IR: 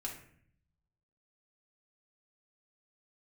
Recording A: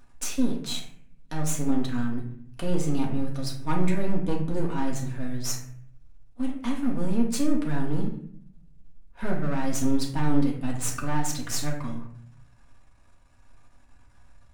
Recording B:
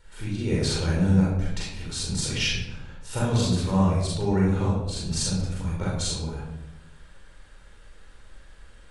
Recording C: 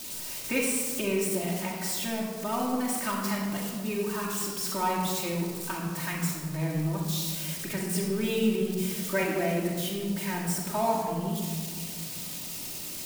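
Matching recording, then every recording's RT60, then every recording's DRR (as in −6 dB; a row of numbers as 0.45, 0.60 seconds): A; 0.60, 1.0, 1.7 seconds; −2.0, −5.0, −4.5 decibels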